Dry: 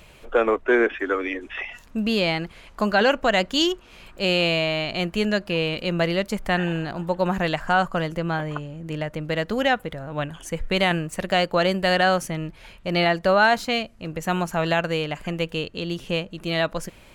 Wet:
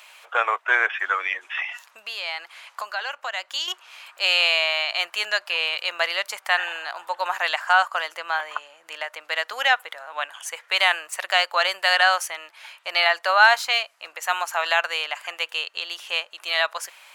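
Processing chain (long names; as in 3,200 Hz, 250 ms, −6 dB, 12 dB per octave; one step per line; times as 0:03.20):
0:01.47–0:03.68: downward compressor 8 to 1, threshold −27 dBFS, peak gain reduction 12.5 dB
high-pass filter 830 Hz 24 dB per octave
level +5 dB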